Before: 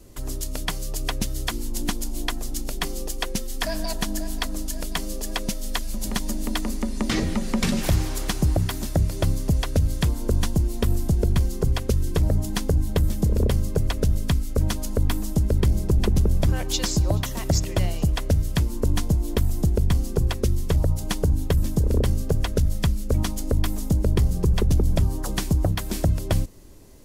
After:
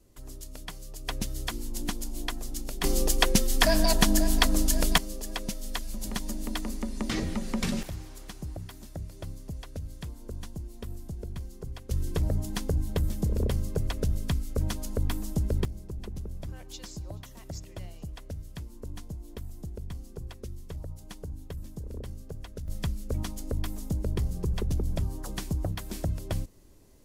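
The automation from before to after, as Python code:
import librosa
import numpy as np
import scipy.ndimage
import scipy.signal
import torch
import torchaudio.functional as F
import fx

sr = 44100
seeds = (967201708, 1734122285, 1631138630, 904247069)

y = fx.gain(x, sr, db=fx.steps((0.0, -13.0), (1.08, -6.0), (2.84, 5.0), (4.98, -6.5), (7.83, -17.0), (11.91, -6.5), (15.65, -18.0), (22.68, -9.0)))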